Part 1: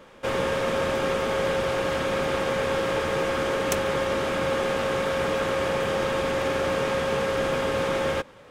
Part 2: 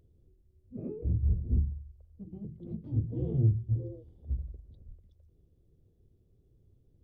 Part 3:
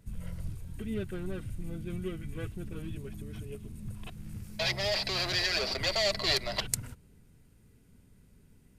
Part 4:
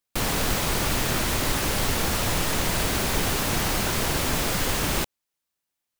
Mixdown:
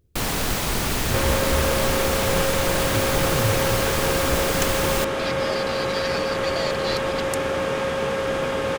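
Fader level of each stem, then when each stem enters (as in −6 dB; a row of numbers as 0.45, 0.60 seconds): +1.0, +0.5, −2.5, +0.5 decibels; 0.90, 0.00, 0.60, 0.00 seconds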